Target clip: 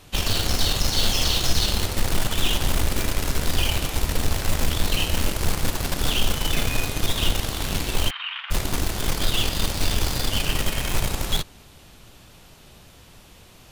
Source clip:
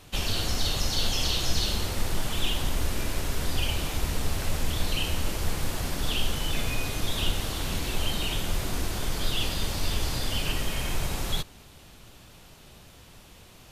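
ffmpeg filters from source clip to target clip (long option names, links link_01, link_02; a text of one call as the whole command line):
ffmpeg -i in.wav -filter_complex "[0:a]asplit=2[link_01][link_02];[link_02]acrusher=bits=3:mix=0:aa=0.000001,volume=-8dB[link_03];[link_01][link_03]amix=inputs=2:normalize=0,asplit=3[link_04][link_05][link_06];[link_04]afade=type=out:start_time=8.09:duration=0.02[link_07];[link_05]asuperpass=centerf=1800:order=8:qfactor=0.87,afade=type=in:start_time=8.09:duration=0.02,afade=type=out:start_time=8.5:duration=0.02[link_08];[link_06]afade=type=in:start_time=8.5:duration=0.02[link_09];[link_07][link_08][link_09]amix=inputs=3:normalize=0,volume=2dB" out.wav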